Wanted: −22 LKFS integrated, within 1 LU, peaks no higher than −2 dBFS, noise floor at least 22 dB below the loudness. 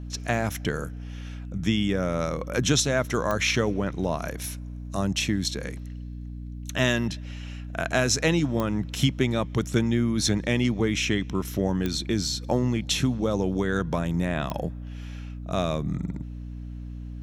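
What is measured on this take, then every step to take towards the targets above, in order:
number of clicks 4; mains hum 60 Hz; hum harmonics up to 300 Hz; level of the hum −34 dBFS; integrated loudness −26.5 LKFS; sample peak −8.0 dBFS; target loudness −22.0 LKFS
→ click removal
hum removal 60 Hz, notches 5
level +4.5 dB

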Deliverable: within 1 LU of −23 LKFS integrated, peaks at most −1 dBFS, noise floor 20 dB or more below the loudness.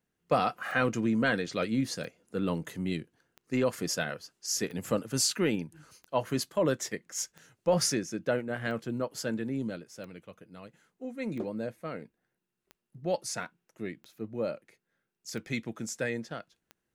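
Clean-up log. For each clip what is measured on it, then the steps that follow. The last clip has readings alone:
number of clicks 13; integrated loudness −32.0 LKFS; sample peak −14.0 dBFS; target loudness −23.0 LKFS
→ click removal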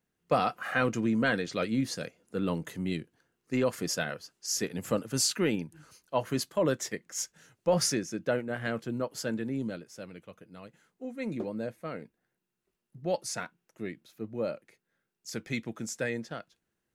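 number of clicks 0; integrated loudness −32.0 LKFS; sample peak −14.0 dBFS; target loudness −23.0 LKFS
→ level +9 dB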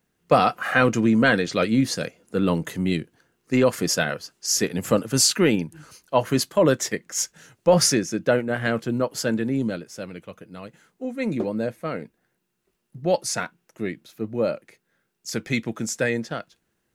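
integrated loudness −23.0 LKFS; sample peak −5.0 dBFS; background noise floor −74 dBFS

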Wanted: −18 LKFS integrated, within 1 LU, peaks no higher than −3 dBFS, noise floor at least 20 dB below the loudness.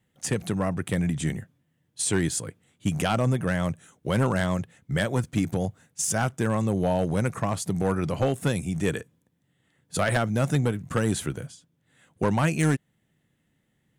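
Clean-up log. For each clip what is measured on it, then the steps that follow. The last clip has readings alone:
share of clipped samples 0.7%; peaks flattened at −15.5 dBFS; integrated loudness −26.5 LKFS; sample peak −15.5 dBFS; target loudness −18.0 LKFS
→ clipped peaks rebuilt −15.5 dBFS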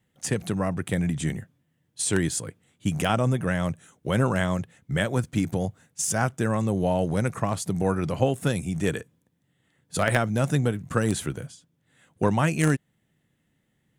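share of clipped samples 0.0%; integrated loudness −26.5 LKFS; sample peak −6.5 dBFS; target loudness −18.0 LKFS
→ level +8.5 dB
brickwall limiter −3 dBFS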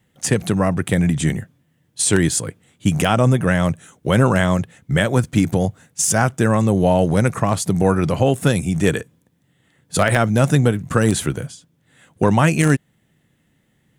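integrated loudness −18.5 LKFS; sample peak −3.0 dBFS; background noise floor −64 dBFS

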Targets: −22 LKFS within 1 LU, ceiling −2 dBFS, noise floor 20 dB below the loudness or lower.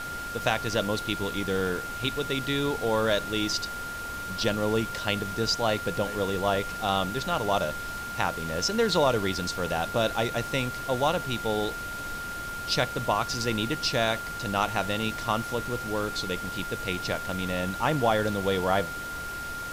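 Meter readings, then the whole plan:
interfering tone 1,400 Hz; level of the tone −34 dBFS; background noise floor −36 dBFS; target noise floor −48 dBFS; integrated loudness −28.0 LKFS; sample peak −10.5 dBFS; target loudness −22.0 LKFS
→ notch filter 1,400 Hz, Q 30
noise reduction from a noise print 12 dB
level +6 dB

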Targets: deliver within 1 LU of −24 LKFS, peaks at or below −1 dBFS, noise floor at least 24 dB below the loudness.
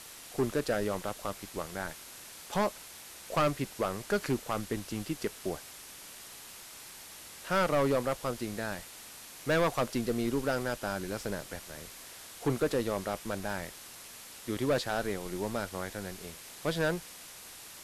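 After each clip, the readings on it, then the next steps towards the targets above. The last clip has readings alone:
share of clipped samples 1.2%; peaks flattened at −22.5 dBFS; background noise floor −49 dBFS; target noise floor −58 dBFS; integrated loudness −33.5 LKFS; sample peak −22.5 dBFS; target loudness −24.0 LKFS
→ clipped peaks rebuilt −22.5 dBFS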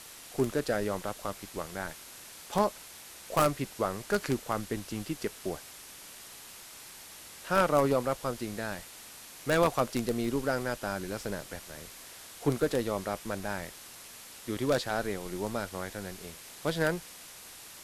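share of clipped samples 0.0%; background noise floor −49 dBFS; target noise floor −56 dBFS
→ broadband denoise 7 dB, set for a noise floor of −49 dBFS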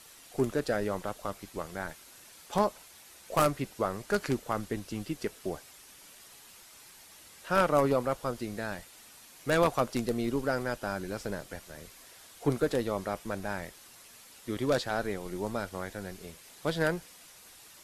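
background noise floor −54 dBFS; target noise floor −56 dBFS
→ broadband denoise 6 dB, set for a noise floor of −54 dBFS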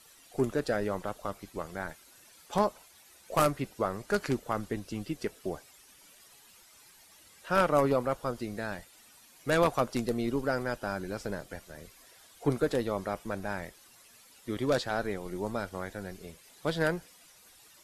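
background noise floor −58 dBFS; integrated loudness −32.0 LKFS; sample peak −13.0 dBFS; target loudness −24.0 LKFS
→ level +8 dB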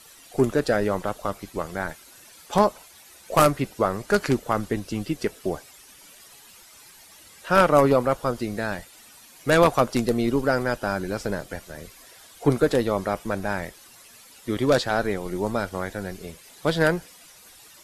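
integrated loudness −24.0 LKFS; sample peak −5.0 dBFS; background noise floor −50 dBFS

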